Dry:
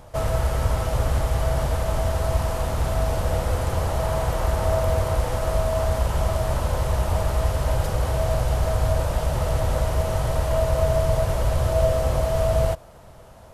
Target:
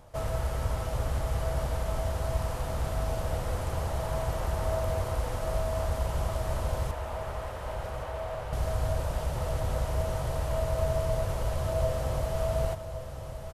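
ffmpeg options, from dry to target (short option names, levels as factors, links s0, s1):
-filter_complex "[0:a]asettb=1/sr,asplit=3[s0][s1][s2];[s0]atrim=end=6.914[s3];[s1]atrim=start=6.91:end=8.53,asetpts=PTS-STARTPTS,afade=t=in:d=0.004:c=qsin,afade=t=out:st=1.616:d=0.004:c=qsin,acrossover=split=410 3300:gain=0.251 1 0.2[s4][s5][s6];[s4][s5][s6]amix=inputs=3:normalize=0[s7];[s2]atrim=start=8.526[s8];[s3][s7]acrossfade=d=0.004:c1=hsin:c2=qsin[s9];[s9][s8]acrossfade=d=0.004:c1=qsin:c2=hsin,aecho=1:1:1117|2234|3351|4468|5585|6702:0.299|0.164|0.0903|0.0497|0.0273|0.015,volume=0.398"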